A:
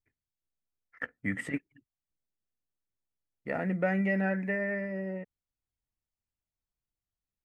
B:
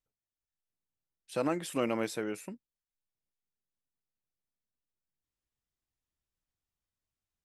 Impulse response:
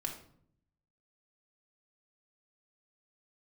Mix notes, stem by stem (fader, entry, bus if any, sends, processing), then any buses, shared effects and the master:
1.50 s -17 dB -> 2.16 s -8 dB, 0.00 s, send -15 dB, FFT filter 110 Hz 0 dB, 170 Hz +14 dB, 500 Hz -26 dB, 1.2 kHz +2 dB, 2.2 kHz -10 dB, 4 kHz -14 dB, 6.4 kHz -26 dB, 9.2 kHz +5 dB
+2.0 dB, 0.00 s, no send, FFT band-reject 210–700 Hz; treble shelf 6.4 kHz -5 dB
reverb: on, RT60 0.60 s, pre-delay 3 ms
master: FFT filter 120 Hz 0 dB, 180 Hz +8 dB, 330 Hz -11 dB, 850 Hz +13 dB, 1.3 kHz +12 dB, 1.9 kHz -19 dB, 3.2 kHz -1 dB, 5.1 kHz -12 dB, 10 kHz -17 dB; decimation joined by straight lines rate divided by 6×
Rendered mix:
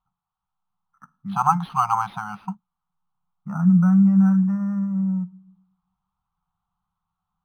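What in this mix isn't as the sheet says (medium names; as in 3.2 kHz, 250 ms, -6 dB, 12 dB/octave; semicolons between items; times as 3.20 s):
stem A -17.0 dB -> -10.0 dB; stem B +2.0 dB -> +9.5 dB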